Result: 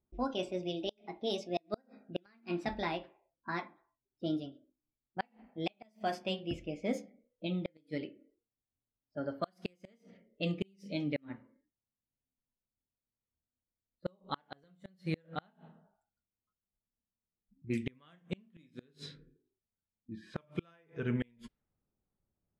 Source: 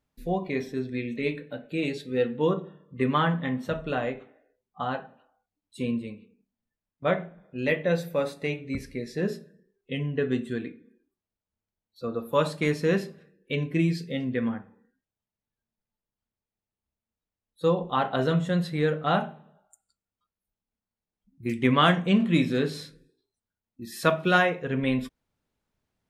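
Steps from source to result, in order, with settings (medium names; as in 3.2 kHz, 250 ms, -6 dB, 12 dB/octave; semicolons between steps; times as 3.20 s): gliding tape speed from 142% -> 89%; peaking EQ 850 Hz -4 dB 2.1 oct; level-controlled noise filter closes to 950 Hz, open at -24 dBFS; inverted gate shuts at -18 dBFS, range -36 dB; trim -4 dB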